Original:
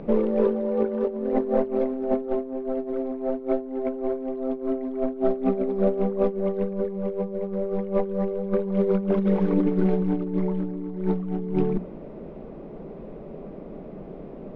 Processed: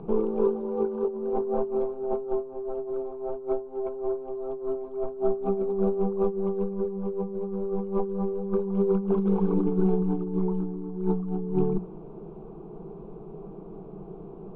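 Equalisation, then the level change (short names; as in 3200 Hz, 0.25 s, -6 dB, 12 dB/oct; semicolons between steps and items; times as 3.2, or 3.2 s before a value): LPF 2600 Hz 12 dB/oct; air absorption 68 m; fixed phaser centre 380 Hz, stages 8; 0.0 dB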